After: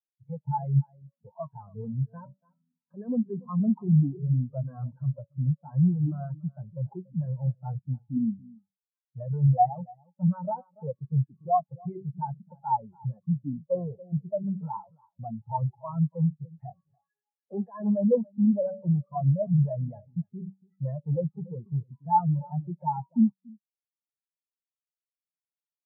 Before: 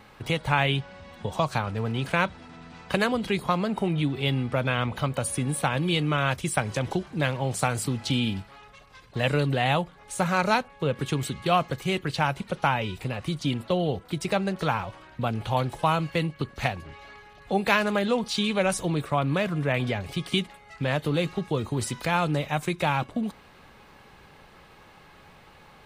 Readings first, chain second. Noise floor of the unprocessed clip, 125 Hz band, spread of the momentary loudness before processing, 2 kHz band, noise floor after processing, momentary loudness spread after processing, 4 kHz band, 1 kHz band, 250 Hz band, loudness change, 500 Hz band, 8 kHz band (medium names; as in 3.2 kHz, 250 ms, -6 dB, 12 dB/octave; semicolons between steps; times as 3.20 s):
-52 dBFS, +1.5 dB, 7 LU, under -35 dB, under -85 dBFS, 16 LU, under -40 dB, -3.5 dB, +0.5 dB, -2.0 dB, -6.0 dB, under -40 dB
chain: resonant low shelf 100 Hz -8 dB, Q 1.5; de-hum 191.3 Hz, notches 5; in parallel at -2.5 dB: compression, threshold -33 dBFS, peak gain reduction 16 dB; on the sum: peak limiter -14 dBFS, peak gain reduction 8.5 dB; band-stop 780 Hz, Q 15; delay 286 ms -10 dB; saturation -25 dBFS, distortion -10 dB; dynamic bell 850 Hz, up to +6 dB, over -44 dBFS, Q 1.1; low-pass 2.2 kHz 24 dB/octave; spectral contrast expander 4:1; trim +6 dB